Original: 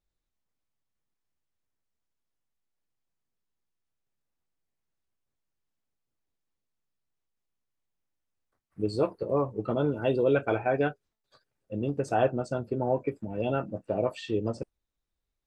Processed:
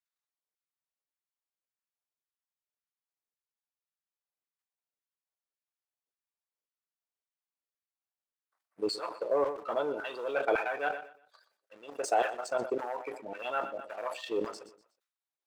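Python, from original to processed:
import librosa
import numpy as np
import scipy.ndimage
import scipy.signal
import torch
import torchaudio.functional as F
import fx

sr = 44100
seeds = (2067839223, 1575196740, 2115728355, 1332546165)

y = fx.bass_treble(x, sr, bass_db=-6, treble_db=6, at=(11.77, 12.48))
y = fx.level_steps(y, sr, step_db=10)
y = fx.leveller(y, sr, passes=1)
y = fx.filter_lfo_highpass(y, sr, shape='saw_down', hz=1.8, low_hz=440.0, high_hz=1500.0, q=1.4)
y = fx.echo_feedback(y, sr, ms=122, feedback_pct=40, wet_db=-19)
y = fx.sustainer(y, sr, db_per_s=110.0)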